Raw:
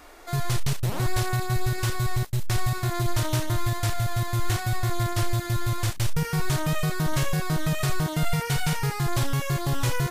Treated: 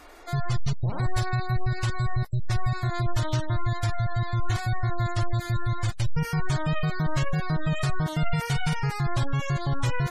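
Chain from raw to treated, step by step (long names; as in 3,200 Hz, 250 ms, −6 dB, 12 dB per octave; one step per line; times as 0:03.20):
gate on every frequency bin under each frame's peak −30 dB strong
dynamic equaliser 380 Hz, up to −5 dB, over −44 dBFS, Q 1.9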